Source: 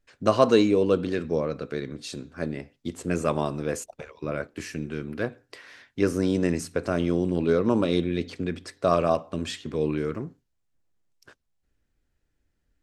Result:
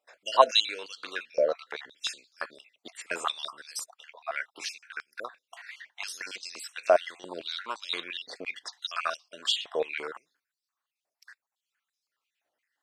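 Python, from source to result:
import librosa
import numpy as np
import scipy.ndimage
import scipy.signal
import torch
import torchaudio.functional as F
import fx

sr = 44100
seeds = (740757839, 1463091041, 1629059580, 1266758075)

y = fx.spec_dropout(x, sr, seeds[0], share_pct=41)
y = fx.dynamic_eq(y, sr, hz=4200.0, q=0.73, threshold_db=-47.0, ratio=4.0, max_db=4)
y = fx.filter_held_highpass(y, sr, hz=5.8, low_hz=660.0, high_hz=4600.0)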